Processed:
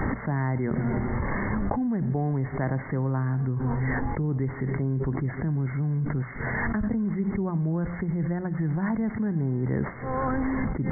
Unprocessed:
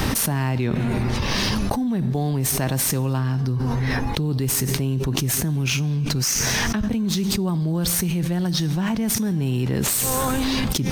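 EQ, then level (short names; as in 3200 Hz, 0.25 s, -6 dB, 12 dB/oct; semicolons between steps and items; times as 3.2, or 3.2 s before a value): brick-wall FIR low-pass 2200 Hz; notches 60/120/180 Hz; -3.5 dB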